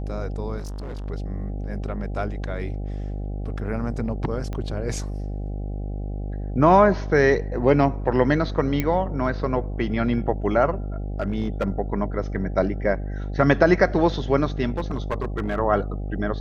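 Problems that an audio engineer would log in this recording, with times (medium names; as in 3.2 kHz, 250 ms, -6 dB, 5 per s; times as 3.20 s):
buzz 50 Hz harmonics 16 -29 dBFS
0.58–1.06 s: clipped -29.5 dBFS
4.53 s: pop -19 dBFS
8.80 s: pop -10 dBFS
11.20–11.68 s: clipped -17.5 dBFS
14.77–15.59 s: clipped -20 dBFS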